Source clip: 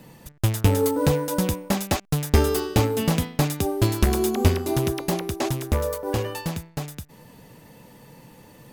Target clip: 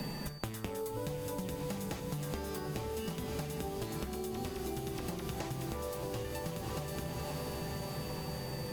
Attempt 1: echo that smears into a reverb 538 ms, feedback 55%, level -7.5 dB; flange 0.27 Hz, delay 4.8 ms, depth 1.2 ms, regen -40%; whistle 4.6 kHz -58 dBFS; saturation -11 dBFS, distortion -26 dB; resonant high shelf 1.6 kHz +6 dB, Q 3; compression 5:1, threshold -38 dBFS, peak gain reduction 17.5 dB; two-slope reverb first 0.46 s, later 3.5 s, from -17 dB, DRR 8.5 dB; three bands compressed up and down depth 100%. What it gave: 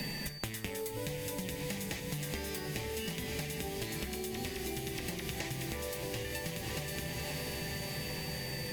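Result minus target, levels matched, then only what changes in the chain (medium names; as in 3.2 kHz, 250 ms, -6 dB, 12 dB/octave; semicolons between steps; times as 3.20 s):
saturation: distortion +18 dB; 2 kHz band +6.0 dB
change: saturation -1 dBFS, distortion -44 dB; remove: resonant high shelf 1.6 kHz +6 dB, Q 3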